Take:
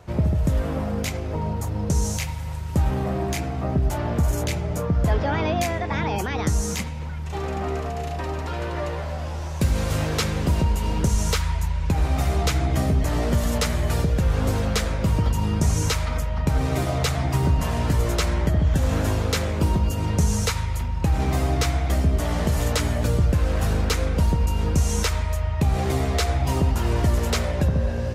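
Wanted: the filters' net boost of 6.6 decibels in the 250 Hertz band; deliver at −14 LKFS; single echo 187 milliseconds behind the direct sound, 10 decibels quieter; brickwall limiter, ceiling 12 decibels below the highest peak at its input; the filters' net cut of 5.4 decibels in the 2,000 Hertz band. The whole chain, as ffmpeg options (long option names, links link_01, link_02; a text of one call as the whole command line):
ffmpeg -i in.wav -af "equalizer=frequency=250:width_type=o:gain=9,equalizer=frequency=2000:width_type=o:gain=-7,alimiter=limit=-17.5dB:level=0:latency=1,aecho=1:1:187:0.316,volume=12dB" out.wav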